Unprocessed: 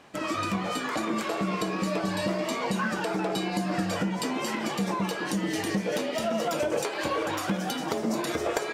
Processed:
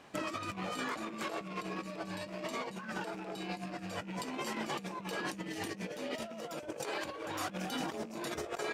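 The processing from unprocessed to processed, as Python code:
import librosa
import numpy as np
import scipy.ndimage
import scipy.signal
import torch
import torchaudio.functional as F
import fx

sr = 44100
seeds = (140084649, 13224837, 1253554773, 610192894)

y = fx.rattle_buzz(x, sr, strikes_db=-34.0, level_db=-29.0)
y = fx.over_compress(y, sr, threshold_db=-32.0, ratio=-0.5)
y = y * 10.0 ** (-7.0 / 20.0)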